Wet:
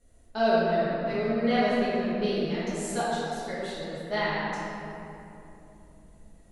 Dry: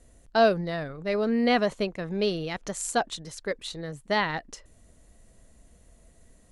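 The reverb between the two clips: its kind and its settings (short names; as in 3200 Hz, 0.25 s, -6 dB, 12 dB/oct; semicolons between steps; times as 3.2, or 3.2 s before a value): shoebox room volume 130 m³, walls hard, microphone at 1.4 m; gain -12 dB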